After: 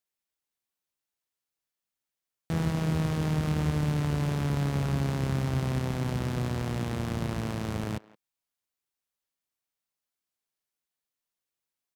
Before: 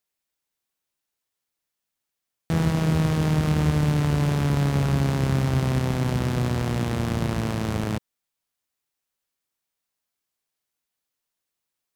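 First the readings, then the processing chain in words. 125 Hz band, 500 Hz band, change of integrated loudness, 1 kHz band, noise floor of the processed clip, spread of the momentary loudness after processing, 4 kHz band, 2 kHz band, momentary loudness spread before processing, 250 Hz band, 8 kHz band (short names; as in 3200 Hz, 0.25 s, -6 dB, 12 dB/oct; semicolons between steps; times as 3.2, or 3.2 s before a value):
-6.0 dB, -6.0 dB, -6.0 dB, -6.0 dB, under -85 dBFS, 5 LU, -6.0 dB, -6.0 dB, 5 LU, -6.0 dB, -6.0 dB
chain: speakerphone echo 0.17 s, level -19 dB; gain -6 dB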